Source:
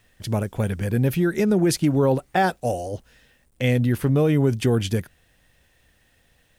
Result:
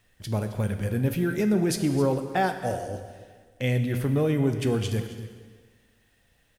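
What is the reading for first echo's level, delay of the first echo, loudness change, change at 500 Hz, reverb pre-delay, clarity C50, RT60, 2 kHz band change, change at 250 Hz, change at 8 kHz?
-16.0 dB, 266 ms, -4.5 dB, -4.5 dB, 6 ms, 8.0 dB, 1.5 s, -4.0 dB, -4.0 dB, -4.0 dB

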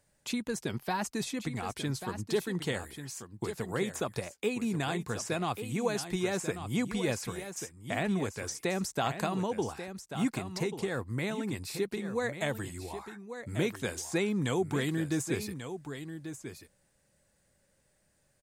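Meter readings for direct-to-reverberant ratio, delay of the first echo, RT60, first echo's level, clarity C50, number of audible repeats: no reverb, 1139 ms, no reverb, -10.0 dB, no reverb, 1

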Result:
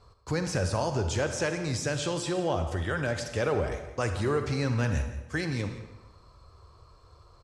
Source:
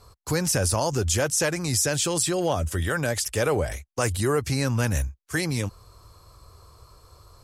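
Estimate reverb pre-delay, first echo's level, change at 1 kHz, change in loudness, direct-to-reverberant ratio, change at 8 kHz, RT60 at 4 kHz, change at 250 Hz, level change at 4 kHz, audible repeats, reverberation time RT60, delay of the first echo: 39 ms, -16.5 dB, -3.5 dB, -5.0 dB, 6.5 dB, -13.0 dB, 0.80 s, -3.5 dB, -7.0 dB, 1, 1.1 s, 171 ms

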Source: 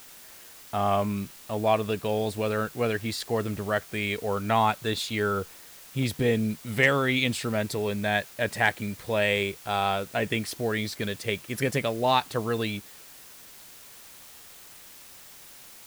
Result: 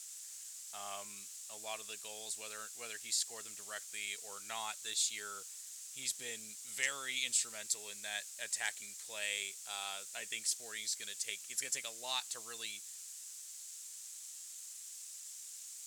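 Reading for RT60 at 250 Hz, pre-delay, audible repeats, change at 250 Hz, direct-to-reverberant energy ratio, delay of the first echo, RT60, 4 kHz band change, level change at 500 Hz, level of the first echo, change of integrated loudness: no reverb, no reverb, no echo, -32.5 dB, no reverb, no echo, no reverb, -7.0 dB, -26.0 dB, no echo, -12.5 dB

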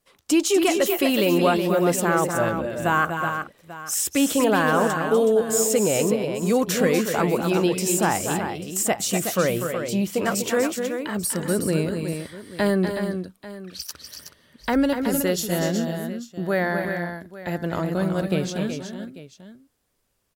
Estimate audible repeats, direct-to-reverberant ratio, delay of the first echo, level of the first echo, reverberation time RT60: 3, no reverb, 244 ms, -8.0 dB, no reverb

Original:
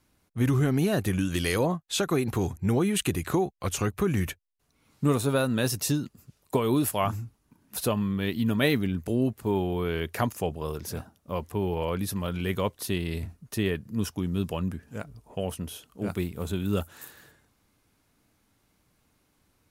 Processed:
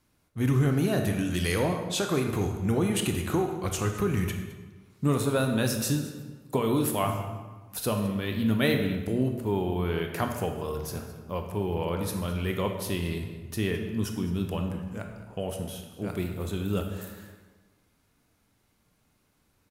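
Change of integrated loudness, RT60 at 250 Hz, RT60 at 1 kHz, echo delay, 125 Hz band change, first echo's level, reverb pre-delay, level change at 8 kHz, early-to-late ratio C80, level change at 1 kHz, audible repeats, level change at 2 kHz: -0.5 dB, 1.4 s, 1.3 s, 212 ms, 0.0 dB, -17.5 dB, 21 ms, -1.0 dB, 7.0 dB, -0.5 dB, 1, -0.5 dB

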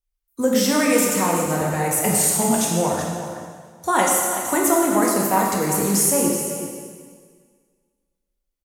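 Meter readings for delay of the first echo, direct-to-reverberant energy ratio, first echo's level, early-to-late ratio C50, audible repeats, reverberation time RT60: 377 ms, -2.5 dB, -11.0 dB, 0.5 dB, 1, 1.8 s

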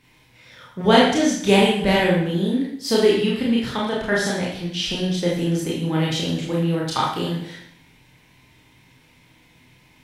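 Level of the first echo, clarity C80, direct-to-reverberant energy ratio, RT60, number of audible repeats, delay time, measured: no echo, 5.5 dB, -5.0 dB, 0.70 s, no echo, no echo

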